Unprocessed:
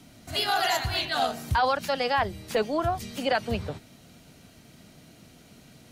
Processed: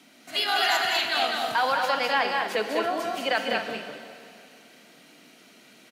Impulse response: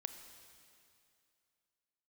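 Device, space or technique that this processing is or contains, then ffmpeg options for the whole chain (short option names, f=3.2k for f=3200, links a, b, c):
stadium PA: -filter_complex "[0:a]highpass=f=220:w=0.5412,highpass=f=220:w=1.3066,equalizer=f=2.2k:t=o:w=1.8:g=7,aecho=1:1:201.2|242:0.631|0.316[a];[1:a]atrim=start_sample=2205[b];[a][b]afir=irnorm=-1:irlink=0"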